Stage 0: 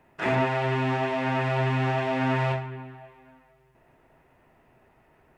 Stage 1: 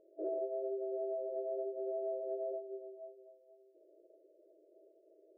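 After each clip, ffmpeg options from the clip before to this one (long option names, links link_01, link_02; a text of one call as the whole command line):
ffmpeg -i in.wav -af "afftfilt=real='re*between(b*sr/4096,310,660)':imag='im*between(b*sr/4096,310,660)':win_size=4096:overlap=0.75,acompressor=threshold=-41dB:ratio=2.5,volume=1.5dB" out.wav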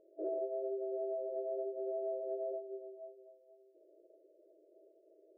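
ffmpeg -i in.wav -af anull out.wav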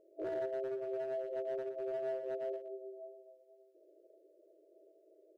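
ffmpeg -i in.wav -af "asoftclip=type=hard:threshold=-34dB,aecho=1:1:119:0.299" out.wav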